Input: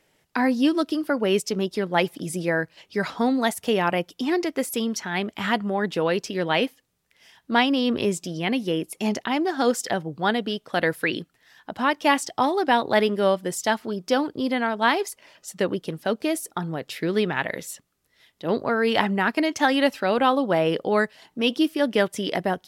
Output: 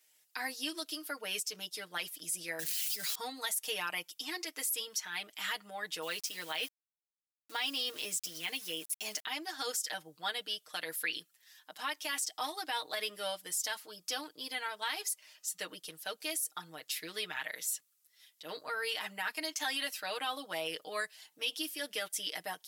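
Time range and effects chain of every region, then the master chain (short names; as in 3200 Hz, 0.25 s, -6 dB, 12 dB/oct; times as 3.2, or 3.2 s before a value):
2.59–3.15 zero-crossing step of -33 dBFS + bell 1000 Hz -15 dB 2 oct + fast leveller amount 100%
6.02–9.25 HPF 57 Hz + sample gate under -40.5 dBFS
whole clip: differentiator; comb 6.5 ms, depth 93%; limiter -24 dBFS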